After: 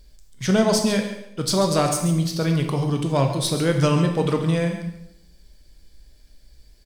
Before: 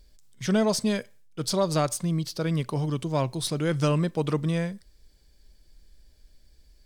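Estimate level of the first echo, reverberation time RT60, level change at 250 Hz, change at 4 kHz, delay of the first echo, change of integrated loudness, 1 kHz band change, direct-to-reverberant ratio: -12.0 dB, 0.85 s, +5.5 dB, +6.0 dB, 137 ms, +5.5 dB, +6.0 dB, 3.5 dB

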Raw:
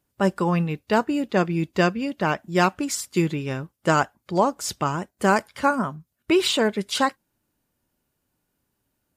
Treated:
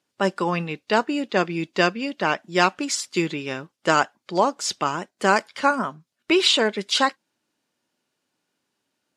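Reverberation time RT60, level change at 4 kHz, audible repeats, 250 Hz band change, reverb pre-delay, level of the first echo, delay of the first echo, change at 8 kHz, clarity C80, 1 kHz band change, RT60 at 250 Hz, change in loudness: no reverb, +5.5 dB, no echo, -2.5 dB, no reverb, no echo, no echo, +1.5 dB, no reverb, +1.0 dB, no reverb, +1.0 dB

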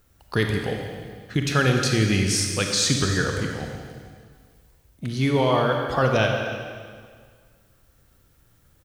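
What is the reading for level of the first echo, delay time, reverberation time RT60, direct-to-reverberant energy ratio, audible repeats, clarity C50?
-16.5 dB, 300 ms, 1.9 s, 2.5 dB, 1, 3.0 dB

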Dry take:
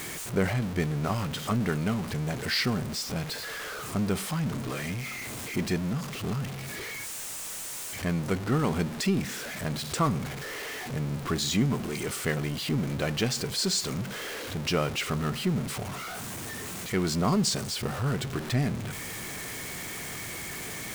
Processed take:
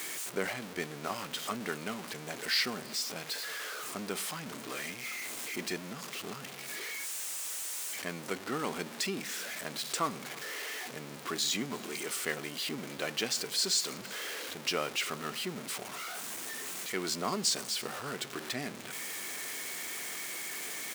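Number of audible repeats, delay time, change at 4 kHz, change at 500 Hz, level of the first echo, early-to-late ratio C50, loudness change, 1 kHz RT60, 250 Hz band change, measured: 1, 330 ms, -1.0 dB, -6.5 dB, -23.5 dB, no reverb, -5.0 dB, no reverb, -12.0 dB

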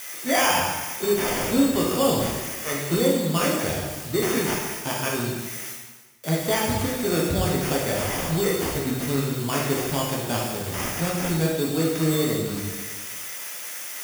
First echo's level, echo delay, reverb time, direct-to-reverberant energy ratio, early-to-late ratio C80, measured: no echo, no echo, 1.3 s, -4.0 dB, 3.5 dB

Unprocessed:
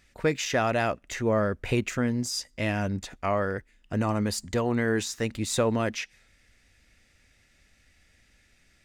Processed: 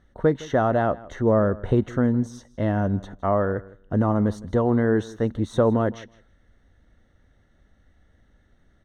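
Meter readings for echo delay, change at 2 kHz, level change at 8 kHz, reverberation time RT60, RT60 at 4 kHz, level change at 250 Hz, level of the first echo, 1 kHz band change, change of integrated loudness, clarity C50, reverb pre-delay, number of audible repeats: 161 ms, -3.0 dB, under -10 dB, no reverb, no reverb, +6.0 dB, -20.0 dB, +3.5 dB, +4.5 dB, no reverb, no reverb, 1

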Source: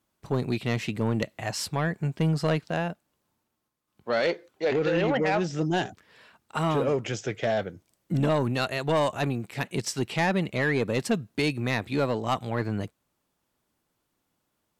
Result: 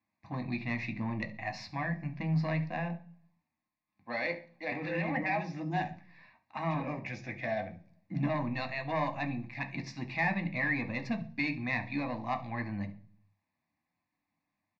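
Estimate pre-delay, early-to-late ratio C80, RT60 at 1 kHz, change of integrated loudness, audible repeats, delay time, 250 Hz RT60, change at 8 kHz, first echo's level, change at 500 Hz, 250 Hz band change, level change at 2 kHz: 3 ms, 20.5 dB, 0.40 s, -7.0 dB, 1, 70 ms, 0.75 s, under -20 dB, -18.0 dB, -12.5 dB, -6.5 dB, -3.0 dB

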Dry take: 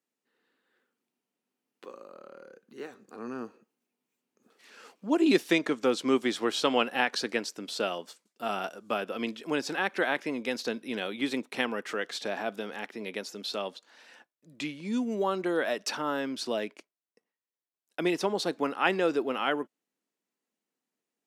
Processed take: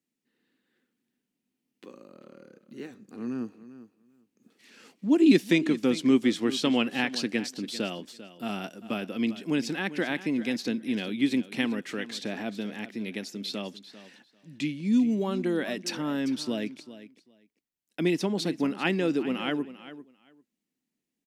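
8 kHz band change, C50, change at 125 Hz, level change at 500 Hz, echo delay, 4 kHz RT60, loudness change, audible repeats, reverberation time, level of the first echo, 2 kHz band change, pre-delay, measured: 0.0 dB, no reverb, +9.0 dB, -1.5 dB, 395 ms, no reverb, +2.0 dB, 2, no reverb, -15.0 dB, -1.5 dB, no reverb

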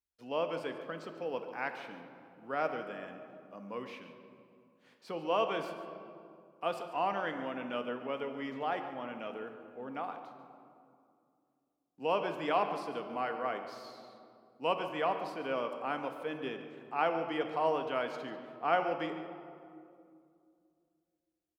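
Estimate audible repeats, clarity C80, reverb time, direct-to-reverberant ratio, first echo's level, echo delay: 1, 8.0 dB, 2.4 s, 5.5 dB, -13.5 dB, 143 ms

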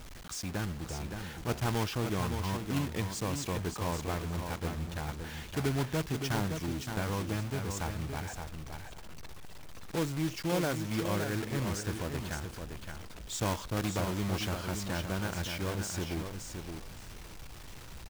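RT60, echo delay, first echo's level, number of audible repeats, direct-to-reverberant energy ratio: no reverb, 568 ms, -6.5 dB, 2, no reverb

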